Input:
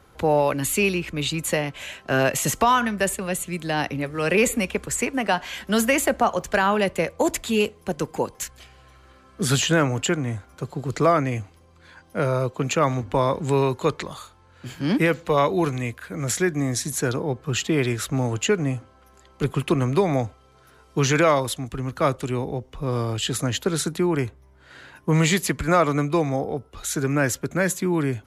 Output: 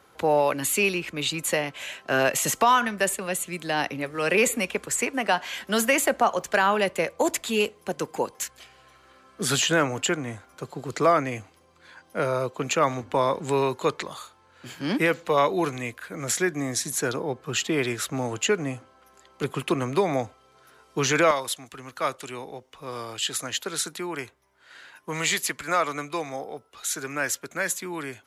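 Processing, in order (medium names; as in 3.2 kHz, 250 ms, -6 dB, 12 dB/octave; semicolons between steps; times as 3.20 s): high-pass 360 Hz 6 dB/octave, from 21.31 s 1.2 kHz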